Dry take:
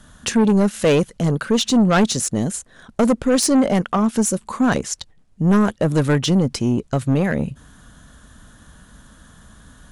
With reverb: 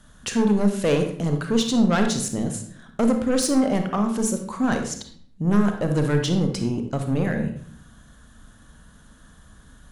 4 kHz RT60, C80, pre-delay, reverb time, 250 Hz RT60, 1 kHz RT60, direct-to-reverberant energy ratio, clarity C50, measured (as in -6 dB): 0.45 s, 10.5 dB, 30 ms, 0.55 s, 0.85 s, 0.50 s, 5.0 dB, 6.5 dB